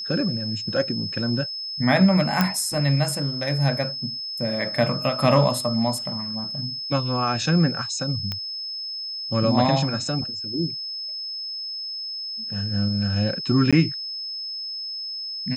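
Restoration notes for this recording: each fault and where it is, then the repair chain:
whine 5.2 kHz -29 dBFS
2.41 s: pop -6 dBFS
8.32 s: pop -14 dBFS
13.71–13.73 s: dropout 16 ms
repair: de-click; band-stop 5.2 kHz, Q 30; interpolate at 13.71 s, 16 ms

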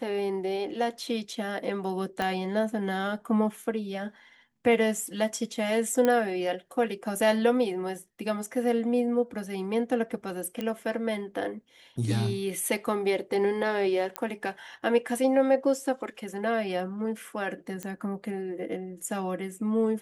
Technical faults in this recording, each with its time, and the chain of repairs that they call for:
2.22 s: pop -15 dBFS
6.05 s: pop -12 dBFS
10.61 s: pop -19 dBFS
14.16 s: pop -14 dBFS
17.83 s: pop -19 dBFS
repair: de-click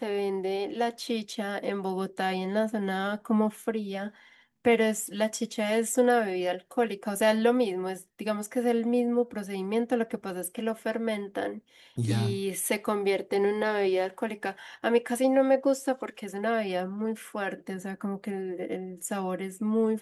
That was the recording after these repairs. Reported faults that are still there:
2.22 s: pop

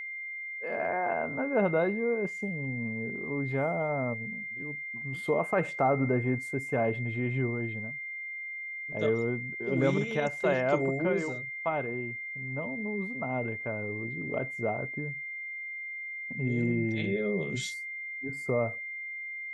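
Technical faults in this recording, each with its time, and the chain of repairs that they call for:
whine 2.1 kHz -36 dBFS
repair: band-stop 2.1 kHz, Q 30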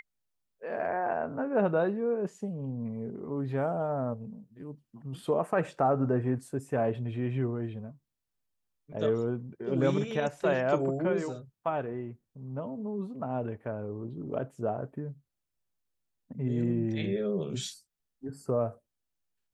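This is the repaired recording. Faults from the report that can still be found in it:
nothing left

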